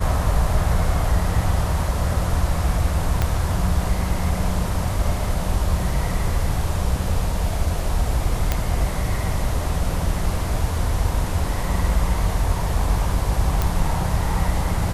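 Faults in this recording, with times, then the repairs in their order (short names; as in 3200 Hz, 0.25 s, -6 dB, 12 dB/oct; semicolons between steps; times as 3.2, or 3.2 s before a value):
3.22 pop -7 dBFS
8.52 pop -5 dBFS
13.62 pop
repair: de-click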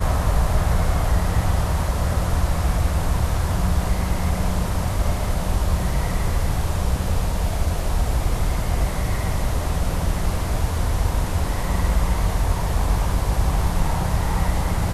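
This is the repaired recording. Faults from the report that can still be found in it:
3.22 pop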